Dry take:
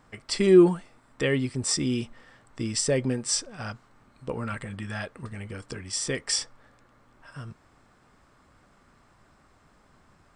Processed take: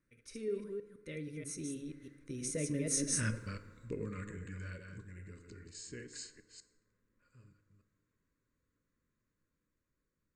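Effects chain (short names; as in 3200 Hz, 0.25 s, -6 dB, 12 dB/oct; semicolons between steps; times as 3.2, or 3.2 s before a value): reverse delay 0.181 s, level -5 dB; Doppler pass-by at 3.33, 40 m/s, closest 6.6 m; thirty-one-band EQ 1250 Hz -9 dB, 3150 Hz -11 dB, 5000 Hz -7 dB; in parallel at -2 dB: compressor, threshold -47 dBFS, peak gain reduction 14.5 dB; on the sum: Butterworth band-stop 780 Hz, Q 1.2; FDN reverb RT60 1.4 s, low-frequency decay 0.8×, high-frequency decay 0.45×, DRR 10 dB; gain +1 dB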